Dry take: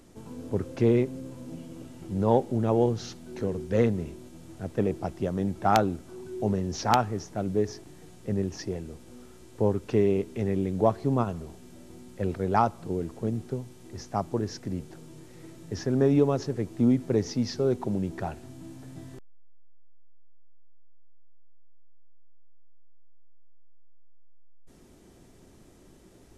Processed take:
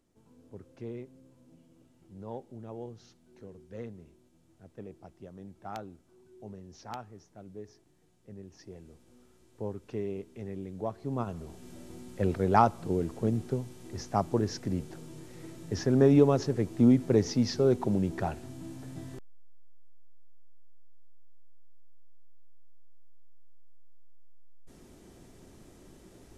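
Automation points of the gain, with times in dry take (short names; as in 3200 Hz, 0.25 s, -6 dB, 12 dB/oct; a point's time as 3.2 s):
8.42 s -18.5 dB
8.88 s -12 dB
10.9 s -12 dB
11.69 s +1 dB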